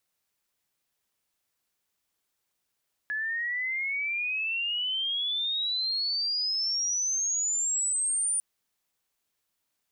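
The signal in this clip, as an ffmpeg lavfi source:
ffmpeg -f lavfi -i "aevalsrc='pow(10,(-28+3.5*t/5.3)/20)*sin(2*PI*1700*5.3/log(9400/1700)*(exp(log(9400/1700)*t/5.3)-1))':duration=5.3:sample_rate=44100" out.wav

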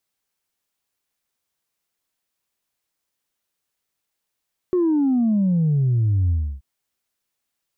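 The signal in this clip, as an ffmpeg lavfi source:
ffmpeg -f lavfi -i "aevalsrc='0.158*clip((1.88-t)/0.31,0,1)*tanh(1*sin(2*PI*370*1.88/log(65/370)*(exp(log(65/370)*t/1.88)-1)))/tanh(1)':duration=1.88:sample_rate=44100" out.wav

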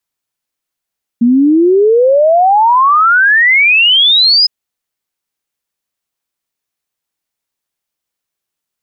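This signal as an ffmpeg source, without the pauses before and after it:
ffmpeg -f lavfi -i "aevalsrc='0.562*clip(min(t,3.26-t)/0.01,0,1)*sin(2*PI*230*3.26/log(5100/230)*(exp(log(5100/230)*t/3.26)-1))':duration=3.26:sample_rate=44100" out.wav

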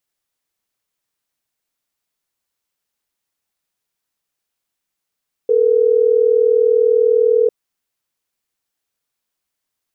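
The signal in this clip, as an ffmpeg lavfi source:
ffmpeg -f lavfi -i "aevalsrc='0.224*(sin(2*PI*440*t)+sin(2*PI*480*t))*clip(min(mod(t,6),2-mod(t,6))/0.005,0,1)':duration=3.12:sample_rate=44100" out.wav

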